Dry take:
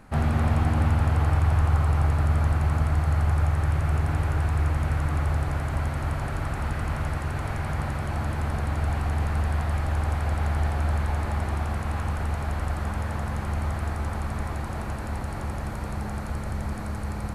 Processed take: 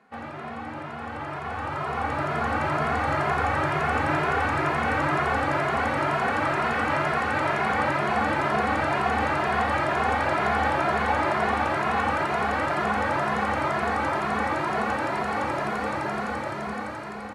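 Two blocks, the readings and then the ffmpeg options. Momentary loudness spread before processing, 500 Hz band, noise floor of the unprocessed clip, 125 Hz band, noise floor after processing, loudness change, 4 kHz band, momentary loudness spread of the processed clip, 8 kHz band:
9 LU, +9.0 dB, -32 dBFS, -10.5 dB, -36 dBFS, +1.5 dB, +7.0 dB, 8 LU, -1.0 dB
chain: -filter_complex "[0:a]highpass=300,lowpass=2300,aemphasis=mode=production:type=75fm,aecho=1:1:265|530|795|1060:0.0668|0.0394|0.0233|0.0137,dynaudnorm=f=320:g=13:m=6.31,asplit=2[s0][s1];[s1]adelay=2.4,afreqshift=2.1[s2];[s0][s2]amix=inputs=2:normalize=1,volume=0.841"

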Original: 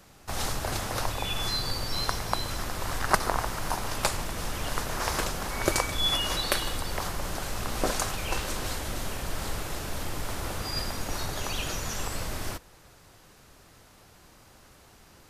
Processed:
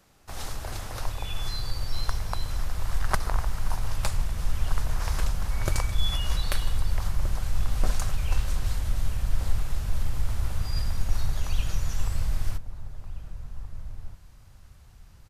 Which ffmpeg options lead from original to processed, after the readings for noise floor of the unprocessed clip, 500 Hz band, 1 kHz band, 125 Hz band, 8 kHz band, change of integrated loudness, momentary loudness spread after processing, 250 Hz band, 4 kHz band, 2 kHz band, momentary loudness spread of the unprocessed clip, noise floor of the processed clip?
-55 dBFS, -8.5 dB, -6.5 dB, +6.0 dB, -6.5 dB, -1.0 dB, 13 LU, -5.5 dB, -6.5 dB, -6.5 dB, 8 LU, -51 dBFS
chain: -filter_complex "[0:a]aeval=exprs='0.596*(cos(1*acos(clip(val(0)/0.596,-1,1)))-cos(1*PI/2))+0.0531*(cos(3*acos(clip(val(0)/0.596,-1,1)))-cos(3*PI/2))+0.00473*(cos(7*acos(clip(val(0)/0.596,-1,1)))-cos(7*PI/2))+0.00668*(cos(8*acos(clip(val(0)/0.596,-1,1)))-cos(8*PI/2))':c=same,asplit=2[s0][s1];[s1]adelay=1574,volume=0.282,highshelf=f=4000:g=-35.4[s2];[s0][s2]amix=inputs=2:normalize=0,asubboost=boost=8.5:cutoff=110,volume=0.668"

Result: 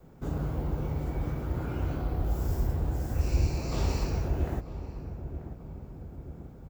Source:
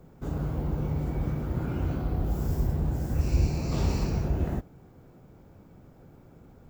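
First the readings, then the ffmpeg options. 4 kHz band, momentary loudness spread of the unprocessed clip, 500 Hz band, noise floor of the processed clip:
0.0 dB, 4 LU, -1.0 dB, -48 dBFS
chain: -filter_complex "[0:a]asplit=2[s0][s1];[s1]adelay=938,lowpass=f=1100:p=1,volume=0.282,asplit=2[s2][s3];[s3]adelay=938,lowpass=f=1100:p=1,volume=0.52,asplit=2[s4][s5];[s5]adelay=938,lowpass=f=1100:p=1,volume=0.52,asplit=2[s6][s7];[s7]adelay=938,lowpass=f=1100:p=1,volume=0.52,asplit=2[s8][s9];[s9]adelay=938,lowpass=f=1100:p=1,volume=0.52,asplit=2[s10][s11];[s11]adelay=938,lowpass=f=1100:p=1,volume=0.52[s12];[s2][s4][s6][s8][s10][s12]amix=inputs=6:normalize=0[s13];[s0][s13]amix=inputs=2:normalize=0,adynamicequalizer=threshold=0.00708:dfrequency=180:dqfactor=1.1:tfrequency=180:tqfactor=1.1:attack=5:release=100:ratio=0.375:range=3.5:mode=cutabove:tftype=bell"

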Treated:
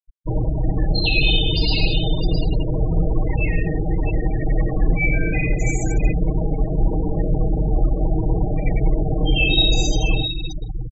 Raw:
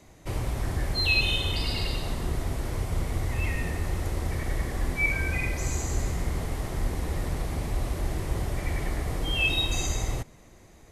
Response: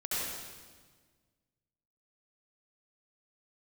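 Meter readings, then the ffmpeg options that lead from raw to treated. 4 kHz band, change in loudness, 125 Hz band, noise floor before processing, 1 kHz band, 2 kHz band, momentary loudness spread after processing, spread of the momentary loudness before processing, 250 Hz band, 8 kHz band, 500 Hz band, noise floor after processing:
+8.0 dB, +8.0 dB, +8.5 dB, -52 dBFS, +4.5 dB, +4.0 dB, 6 LU, 8 LU, +12.0 dB, +1.0 dB, +10.0 dB, -26 dBFS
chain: -filter_complex "[0:a]acrossover=split=330|820|2700[s0][s1][s2][s3];[s2]acompressor=threshold=0.00398:ratio=6[s4];[s0][s1][s4][s3]amix=inputs=4:normalize=0,adynamicequalizer=threshold=0.00251:dfrequency=6300:dqfactor=2.2:tfrequency=6300:tqfactor=2.2:attack=5:release=100:ratio=0.375:range=2.5:mode=cutabove:tftype=bell,aecho=1:1:6.4:0.93,aecho=1:1:88|660:0.299|0.422,afftfilt=real='re*gte(hypot(re,im),0.0447)':imag='im*gte(hypot(re,im),0.0447)':win_size=1024:overlap=0.75,volume=2.51"

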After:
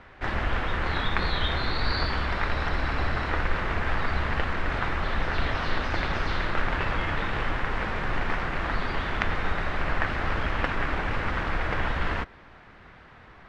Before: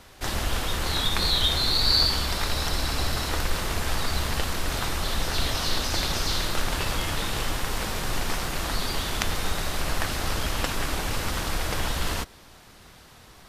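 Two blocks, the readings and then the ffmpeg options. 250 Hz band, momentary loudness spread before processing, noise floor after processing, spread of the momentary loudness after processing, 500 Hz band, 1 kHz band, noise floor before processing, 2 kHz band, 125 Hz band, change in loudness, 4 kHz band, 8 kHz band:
0.0 dB, 8 LU, -50 dBFS, 2 LU, +0.5 dB, +2.0 dB, -50 dBFS, +3.5 dB, 0.0 dB, -2.0 dB, -10.5 dB, -23.0 dB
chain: -af "lowpass=f=1900:t=q:w=1.6"

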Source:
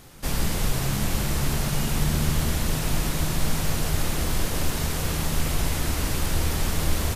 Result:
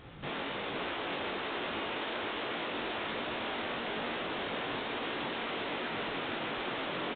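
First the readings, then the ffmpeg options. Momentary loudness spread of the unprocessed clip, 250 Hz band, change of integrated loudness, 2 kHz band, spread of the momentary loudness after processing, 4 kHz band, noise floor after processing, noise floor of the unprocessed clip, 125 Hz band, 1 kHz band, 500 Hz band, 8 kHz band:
2 LU, -10.5 dB, -9.5 dB, -2.5 dB, 0 LU, -6.0 dB, -38 dBFS, -28 dBFS, -25.0 dB, -2.5 dB, -3.0 dB, under -40 dB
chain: -filter_complex "[0:a]afftfilt=real='re*lt(hypot(re,im),0.141)':imag='im*lt(hypot(re,im),0.141)':win_size=1024:overlap=0.75,highpass=f=54:p=1,aresample=16000,asoftclip=type=tanh:threshold=0.0237,aresample=44100,flanger=delay=16.5:depth=5.6:speed=1.2,asplit=2[s0][s1];[s1]aecho=0:1:490:0.501[s2];[s0][s2]amix=inputs=2:normalize=0,aresample=8000,aresample=44100,volume=1.5"

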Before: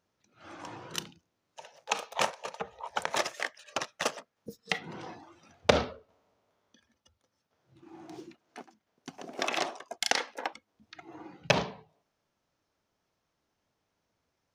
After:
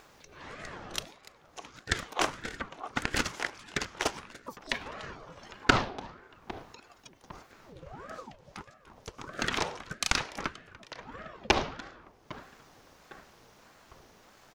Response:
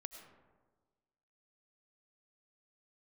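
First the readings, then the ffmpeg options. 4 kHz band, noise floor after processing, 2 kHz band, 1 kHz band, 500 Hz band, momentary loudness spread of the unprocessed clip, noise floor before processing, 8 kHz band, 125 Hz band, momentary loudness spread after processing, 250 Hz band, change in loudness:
+0.5 dB, -60 dBFS, +2.0 dB, +0.5 dB, -3.5 dB, 22 LU, -81 dBFS, +0.5 dB, +2.0 dB, 22 LU, +3.0 dB, -0.5 dB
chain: -filter_complex "[0:a]asplit=2[s0][s1];[s1]aecho=0:1:292:0.0891[s2];[s0][s2]amix=inputs=2:normalize=0,acompressor=mode=upward:threshold=0.01:ratio=2.5,asplit=2[s3][s4];[s4]adelay=805,lowpass=f=2000:p=1,volume=0.133,asplit=2[s5][s6];[s6]adelay=805,lowpass=f=2000:p=1,volume=0.53,asplit=2[s7][s8];[s8]adelay=805,lowpass=f=2000:p=1,volume=0.53,asplit=2[s9][s10];[s10]adelay=805,lowpass=f=2000:p=1,volume=0.53,asplit=2[s11][s12];[s12]adelay=805,lowpass=f=2000:p=1,volume=0.53[s13];[s3][s5][s7][s9][s11][s13]amix=inputs=6:normalize=0,asplit=2[s14][s15];[1:a]atrim=start_sample=2205[s16];[s15][s16]afir=irnorm=-1:irlink=0,volume=0.531[s17];[s14][s17]amix=inputs=2:normalize=0,aeval=exprs='val(0)*sin(2*PI*570*n/s+570*0.7/1.6*sin(2*PI*1.6*n/s))':c=same,volume=1.12"

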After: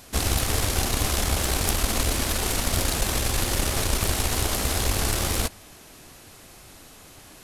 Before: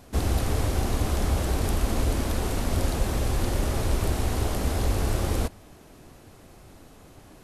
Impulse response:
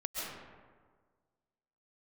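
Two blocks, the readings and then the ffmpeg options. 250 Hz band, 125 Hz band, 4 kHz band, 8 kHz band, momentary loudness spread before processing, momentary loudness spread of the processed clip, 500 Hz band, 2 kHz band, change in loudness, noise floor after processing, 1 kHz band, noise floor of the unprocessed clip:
-1.0 dB, -1.5 dB, +10.0 dB, +11.0 dB, 1 LU, 1 LU, 0.0 dB, +7.0 dB, +3.0 dB, -48 dBFS, +3.0 dB, -51 dBFS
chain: -af "tiltshelf=f=1300:g=-6.5,aeval=exprs='0.299*(cos(1*acos(clip(val(0)/0.299,-1,1)))-cos(1*PI/2))+0.0531*(cos(4*acos(clip(val(0)/0.299,-1,1)))-cos(4*PI/2))':c=same,volume=1.68"

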